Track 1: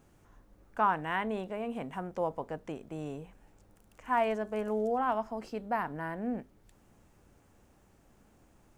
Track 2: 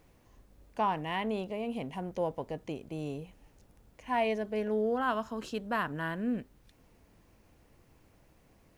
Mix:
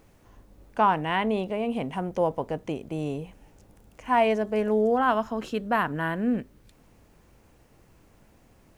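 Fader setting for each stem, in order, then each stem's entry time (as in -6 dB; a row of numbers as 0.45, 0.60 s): +0.5, +3.0 dB; 0.00, 0.00 s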